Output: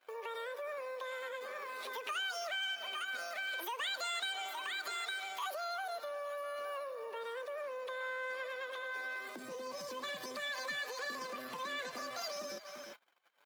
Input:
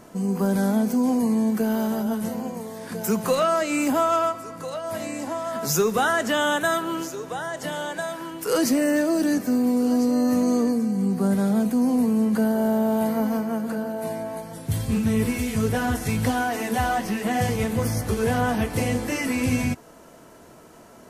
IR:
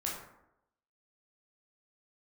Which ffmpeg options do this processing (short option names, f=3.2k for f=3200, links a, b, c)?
-filter_complex "[0:a]acrossover=split=6100[a][b];[b]acompressor=threshold=-53dB:ratio=4:attack=1:release=60[c];[a][c]amix=inputs=2:normalize=0,highshelf=f=2.6k:g=-5,aecho=1:1:541:0.141,atempo=0.67,acompressor=threshold=-33dB:ratio=4,agate=range=-29dB:threshold=-45dB:ratio=16:detection=peak,asetrate=103194,aresample=44100,highpass=f=1.3k:p=1,volume=-2dB"